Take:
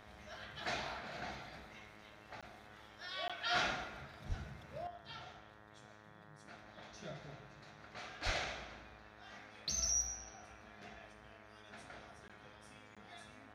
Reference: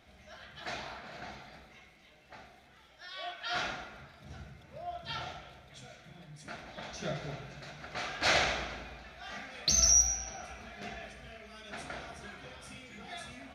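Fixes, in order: de-hum 105.8 Hz, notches 18; 4.28–4.40 s: high-pass 140 Hz 24 dB/octave; 8.25–8.37 s: high-pass 140 Hz 24 dB/octave; interpolate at 2.41/3.28/12.28/12.95 s, 16 ms; 4.87 s: gain correction +11.5 dB

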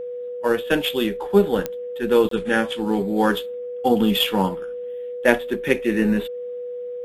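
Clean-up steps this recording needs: de-click; band-stop 490 Hz, Q 30; interpolate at 2.29 s, 23 ms

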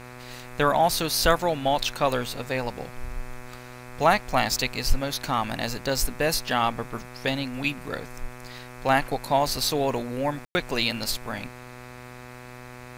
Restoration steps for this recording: de-hum 124 Hz, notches 21; room tone fill 10.45–10.55 s

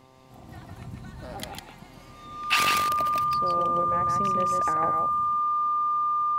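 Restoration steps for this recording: de-hum 130.7 Hz, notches 9; band-stop 1.2 kHz, Q 30; inverse comb 151 ms -3.5 dB

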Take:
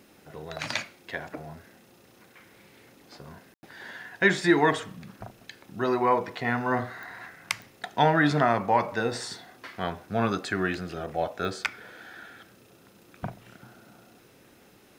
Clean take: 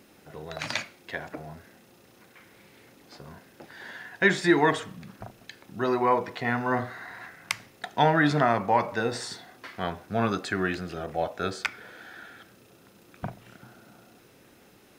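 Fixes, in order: de-click; room tone fill 3.54–3.63 s

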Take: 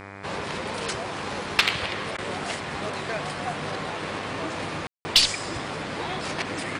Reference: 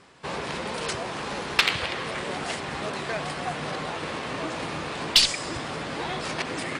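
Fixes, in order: de-hum 98.8 Hz, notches 25; room tone fill 4.87–5.05 s; interpolate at 2.17 s, 12 ms

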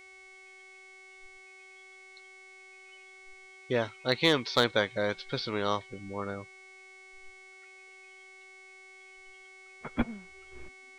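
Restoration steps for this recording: clip repair -13 dBFS; de-hum 380.4 Hz, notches 25; band-stop 2.2 kHz, Q 30

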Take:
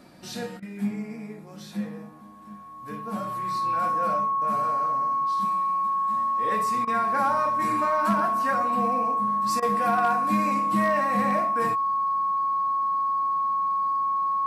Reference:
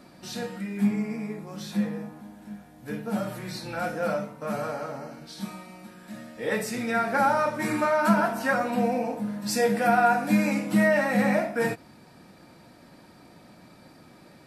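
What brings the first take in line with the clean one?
clip repair -15 dBFS; band-stop 1.1 kHz, Q 30; interpolate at 0.60/6.85/9.60 s, 23 ms; trim 0 dB, from 0.57 s +4.5 dB

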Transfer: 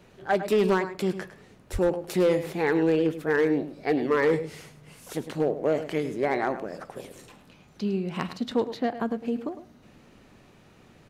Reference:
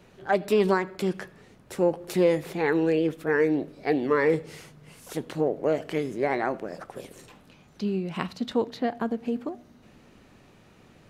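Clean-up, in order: clip repair -16 dBFS; 1.72–1.84 s: high-pass 140 Hz 24 dB/octave; inverse comb 105 ms -12.5 dB

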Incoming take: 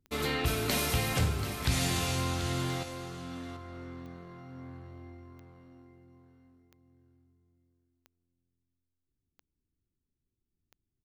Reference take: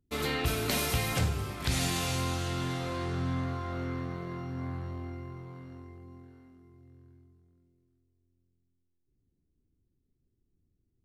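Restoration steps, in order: de-click; inverse comb 735 ms -11.5 dB; trim 0 dB, from 2.83 s +9.5 dB

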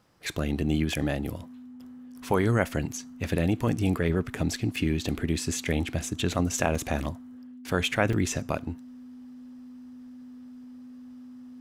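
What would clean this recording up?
band-stop 250 Hz, Q 30; interpolate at 6.75/8.13 s, 4.2 ms

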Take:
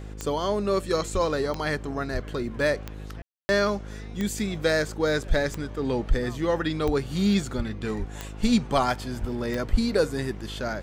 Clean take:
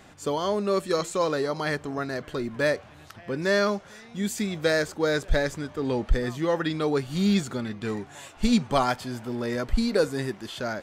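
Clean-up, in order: de-click; de-hum 52 Hz, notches 10; de-plosive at 1.13/2.13/6.85/7.56/7.98/9.20/9.72 s; room tone fill 3.22–3.49 s

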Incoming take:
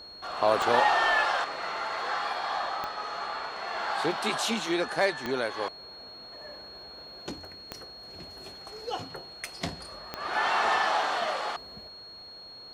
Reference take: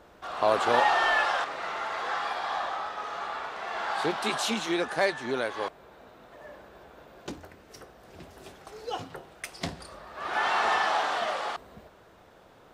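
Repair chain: de-click; band-stop 4.3 kHz, Q 30

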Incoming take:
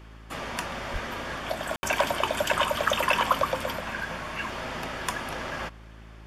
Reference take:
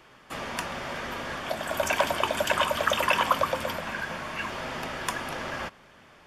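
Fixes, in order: clip repair -11.5 dBFS; de-hum 54.5 Hz, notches 7; de-plosive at 0.92 s; room tone fill 1.76–1.83 s

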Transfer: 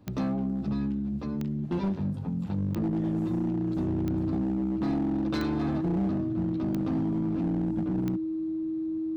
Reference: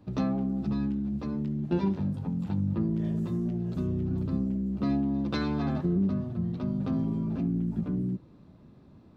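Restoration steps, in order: clip repair -23.5 dBFS; de-click; band-stop 320 Hz, Q 30

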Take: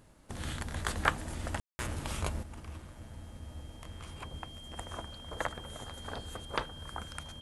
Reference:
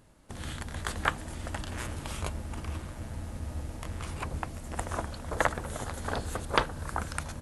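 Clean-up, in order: clip repair -9.5 dBFS; band-stop 3.2 kHz, Q 30; room tone fill 1.60–1.79 s; trim 0 dB, from 2.43 s +8.5 dB

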